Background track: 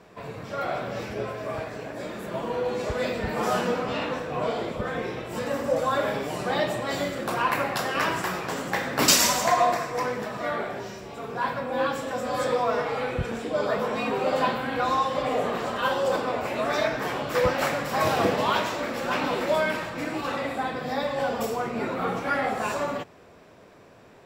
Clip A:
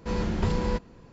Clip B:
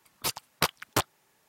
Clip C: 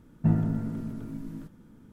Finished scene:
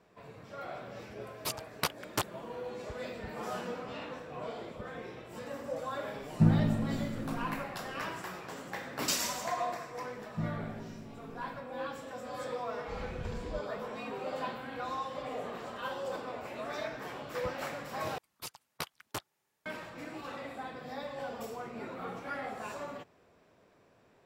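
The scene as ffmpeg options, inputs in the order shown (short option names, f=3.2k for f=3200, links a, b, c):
-filter_complex "[2:a]asplit=2[a][b];[3:a]asplit=2[c][d];[0:a]volume=-13dB[e];[1:a]aecho=1:1:1.8:0.45[f];[e]asplit=2[g][h];[g]atrim=end=18.184[i];[b]atrim=end=1.48,asetpts=PTS-STARTPTS,volume=-13dB[j];[h]atrim=start=19.656[k];[a]atrim=end=1.48,asetpts=PTS-STARTPTS,volume=-6dB,afade=t=in:d=0.004:c=hsin,afade=t=out:st=1.476:d=0.004:c=hsin,adelay=1210[l];[c]atrim=end=1.92,asetpts=PTS-STARTPTS,volume=-0.5dB,afade=t=in:d=0.004:c=hsin,afade=t=out:st=1.916:d=0.004:c=hsin,adelay=6160[m];[d]atrim=end=1.92,asetpts=PTS-STARTPTS,volume=-12.5dB,afade=t=in:d=0.004:c=hsin,afade=t=out:st=1.916:d=0.004:c=hsin,adelay=10130[n];[f]atrim=end=1.12,asetpts=PTS-STARTPTS,volume=-16dB,afade=t=in:d=0.004:c=hsin,afade=t=out:st=1.116:d=0.004:c=hsin,adelay=12820[o];[i][j]acrossfade=d=0.004:c1=hsin:c2=hsin[p];[p][k]acrossfade=d=0.004:c1=hsin:c2=hsin[q];[q][l][m][n][o]amix=inputs=5:normalize=0"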